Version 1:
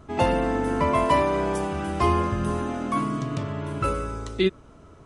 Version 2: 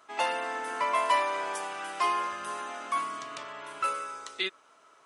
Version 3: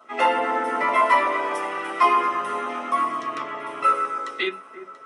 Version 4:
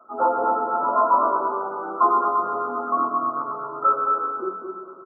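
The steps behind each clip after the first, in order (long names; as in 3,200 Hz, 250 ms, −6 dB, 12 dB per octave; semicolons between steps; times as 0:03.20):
high-pass filter 1,000 Hz 12 dB per octave
auto-filter notch saw down 7.9 Hz 460–2,100 Hz; delay that swaps between a low-pass and a high-pass 342 ms, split 1,600 Hz, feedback 54%, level −12 dB; convolution reverb RT60 0.15 s, pre-delay 3 ms, DRR 1 dB; level −1.5 dB
spectral magnitudes quantised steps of 15 dB; linear-phase brick-wall low-pass 1,500 Hz; repeating echo 219 ms, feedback 29%, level −5 dB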